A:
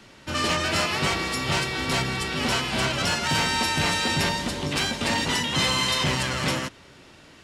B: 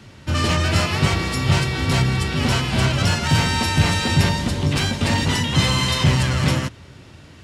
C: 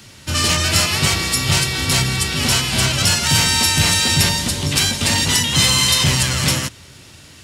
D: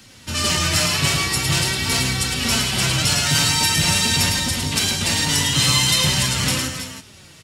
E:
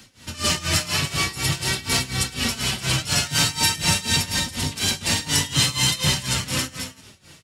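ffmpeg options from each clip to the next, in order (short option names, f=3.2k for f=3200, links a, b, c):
-af "equalizer=f=94:t=o:w=1.8:g=14.5,volume=1.5dB"
-af "crystalizer=i=5:c=0,volume=-2dB"
-af "aecho=1:1:108|316|327:0.596|0.251|0.266,flanger=delay=3.8:depth=3.3:regen=45:speed=0.45:shape=sinusoidal"
-af "tremolo=f=4.1:d=0.87"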